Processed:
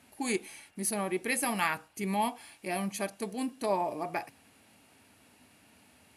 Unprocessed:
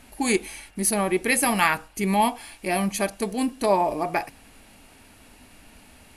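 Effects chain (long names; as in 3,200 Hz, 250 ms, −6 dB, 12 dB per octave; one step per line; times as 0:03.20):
high-pass filter 86 Hz 24 dB per octave
level −9 dB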